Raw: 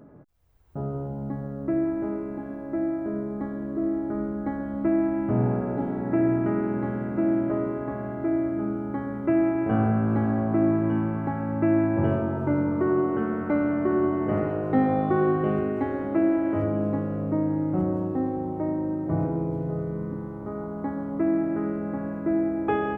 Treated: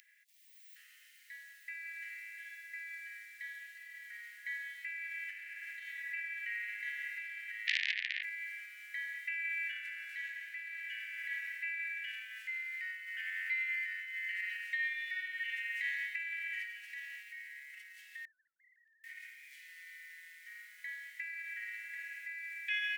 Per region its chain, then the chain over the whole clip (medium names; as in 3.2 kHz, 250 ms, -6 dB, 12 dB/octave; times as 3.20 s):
7.67–8.23 s: steep low-pass 860 Hz + hum notches 60/120/180/240/300/360/420/480/540 Hz + transformer saturation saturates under 2 kHz
18.25–19.04 s: formants replaced by sine waves + low-pass 1.1 kHz 24 dB/octave
whole clip: peak limiter -21 dBFS; steep high-pass 1.8 kHz 96 dB/octave; trim +15.5 dB